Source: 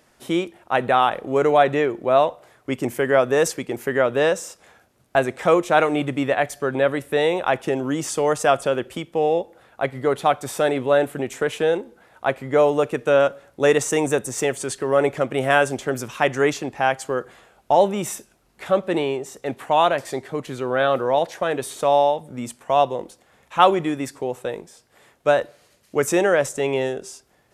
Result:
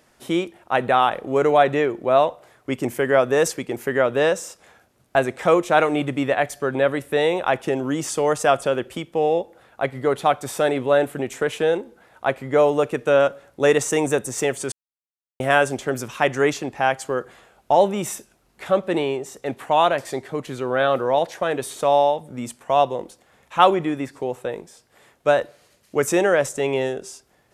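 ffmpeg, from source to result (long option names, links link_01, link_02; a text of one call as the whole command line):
ffmpeg -i in.wav -filter_complex "[0:a]asettb=1/sr,asplit=3[link_01][link_02][link_03];[link_01]atrim=end=23.704[link_04];[link_02]atrim=start=23.7:end=24.58,asetpts=PTS-STARTPTS,afade=type=in:duration=0.004:curve=qsin,afade=type=out:start_time=0.876:duration=0.004:curve=qsin,acrossover=split=3100[link_05][link_06];[link_06]acompressor=threshold=-47dB:ratio=4:attack=1:release=60[link_07];[link_05][link_07]amix=inputs=2:normalize=0[link_08];[link_03]atrim=start=24.576[link_09];[link_04][link_08]acrossfade=duration=0.004:curve1=hsin:curve2=qsin[link_10];[link_10][link_09]acrossfade=duration=0.004:curve1=qsin:curve2=hsin,asplit=3[link_11][link_12][link_13];[link_11]atrim=end=14.72,asetpts=PTS-STARTPTS,afade=type=out:start_time=14.716:duration=0.004:curve=hsin[link_14];[link_12]atrim=start=14.72:end=15.4,asetpts=PTS-STARTPTS,volume=0[link_15];[link_13]atrim=start=15.4,asetpts=PTS-STARTPTS,afade=type=in:duration=0.004:curve=hsin[link_16];[link_14][link_15][link_16]concat=n=3:v=0:a=1" out.wav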